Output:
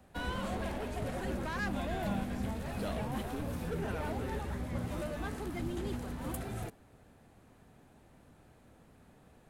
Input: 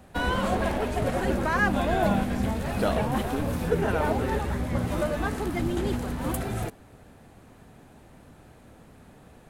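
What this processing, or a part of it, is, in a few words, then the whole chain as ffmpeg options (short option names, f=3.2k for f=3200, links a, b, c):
one-band saturation: -filter_complex "[0:a]acrossover=split=270|2400[a][b][c];[b]asoftclip=type=tanh:threshold=-26.5dB[d];[a][d][c]amix=inputs=3:normalize=0,volume=-9dB"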